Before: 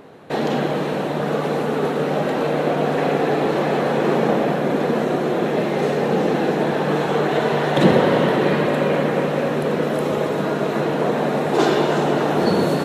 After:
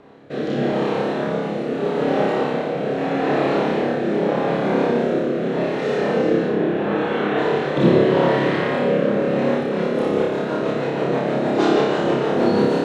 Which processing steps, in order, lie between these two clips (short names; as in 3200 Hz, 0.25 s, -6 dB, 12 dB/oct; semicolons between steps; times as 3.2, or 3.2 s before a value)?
6.47–7.38 band shelf 7000 Hz -10 dB; rotary speaker horn 0.8 Hz, later 6.3 Hz, at 9.23; air absorption 76 m; flutter echo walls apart 5 m, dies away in 0.83 s; gain -2 dB